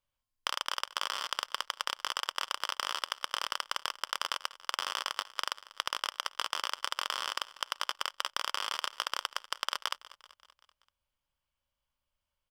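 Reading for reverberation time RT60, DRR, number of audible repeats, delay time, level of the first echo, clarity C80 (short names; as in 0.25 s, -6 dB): none, none, 4, 0.192 s, -19.0 dB, none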